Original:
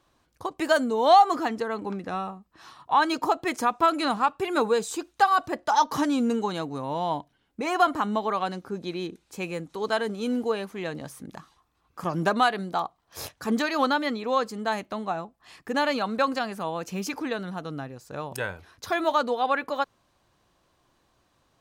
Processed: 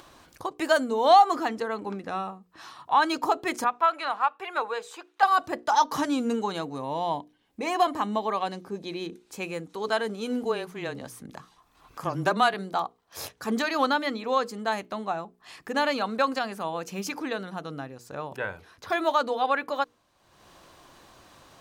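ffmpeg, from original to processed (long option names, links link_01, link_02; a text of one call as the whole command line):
ffmpeg -i in.wav -filter_complex "[0:a]asettb=1/sr,asplit=3[link_01][link_02][link_03];[link_01]atrim=end=3.644[link_04];[link_02]atrim=start=3.64:end=5.23,asetpts=PTS-STARTPTS,afade=type=in:duration=0.004:curve=qsin,afade=type=out:start_time=1.586:duration=0.004:curve=qsin,acrossover=split=560 3300:gain=0.0708 1 0.2[link_05][link_06][link_07];[link_05][link_06][link_07]amix=inputs=3:normalize=0[link_08];[link_03]atrim=start=5.226[link_09];[link_04][link_08]acrossfade=duration=0.004:curve1=hsin:curve2=qsin[link_10];[link_10][link_09]acrossfade=duration=0.004:curve1=qsin:curve2=hsin,asettb=1/sr,asplit=3[link_11][link_12][link_13];[link_11]atrim=end=6.754[link_14];[link_12]atrim=start=6.75:end=9.02,asetpts=PTS-STARTPTS,afade=type=in:duration=0.004:curve=qsin,afade=type=out:start_time=2.266:duration=0.004:curve=qsin,bandreject=frequency=1400:width=5.3[link_15];[link_13]atrim=start=9.016[link_16];[link_14][link_15]acrossfade=duration=0.004:curve1=hsin:curve2=qsin[link_17];[link_17][link_16]acrossfade=duration=0.004:curve1=qsin:curve2=hsin,asettb=1/sr,asplit=3[link_18][link_19][link_20];[link_18]atrim=end=10.434[link_21];[link_19]atrim=start=10.43:end=12.54,asetpts=PTS-STARTPTS,afade=type=in:duration=0.004:curve=qsin,afade=type=out:start_time=2.106:duration=0.004:curve=qsin,afreqshift=-18[link_22];[link_20]atrim=start=12.536[link_23];[link_21][link_22]acrossfade=duration=0.004:curve1=hsin:curve2=qsin[link_24];[link_24][link_23]acrossfade=duration=0.004:curve1=qsin:curve2=hsin,asettb=1/sr,asplit=3[link_25][link_26][link_27];[link_25]atrim=end=18.124[link_28];[link_26]atrim=start=18.12:end=18.9,asetpts=PTS-STARTPTS,afade=type=in:duration=0.004:curve=qsin,afade=type=out:start_time=0.776:duration=0.004:curve=qsin,acrossover=split=2900[link_29][link_30];[link_30]acompressor=threshold=-54dB:ratio=4:attack=1:release=60[link_31];[link_29][link_31]amix=inputs=2:normalize=0[link_32];[link_27]atrim=start=18.896[link_33];[link_28][link_32]acrossfade=duration=0.004:curve1=hsin:curve2=qsin[link_34];[link_34][link_33]acrossfade=duration=0.004:curve1=qsin:curve2=hsin,lowshelf=frequency=170:gain=-5.5,bandreject=frequency=60:width_type=h:width=6,bandreject=frequency=120:width_type=h:width=6,bandreject=frequency=180:width_type=h:width=6,bandreject=frequency=240:width_type=h:width=6,bandreject=frequency=300:width_type=h:width=6,bandreject=frequency=360:width_type=h:width=6,bandreject=frequency=420:width_type=h:width=6,bandreject=frequency=480:width_type=h:width=6,acompressor=mode=upward:threshold=-39dB:ratio=2.5" out.wav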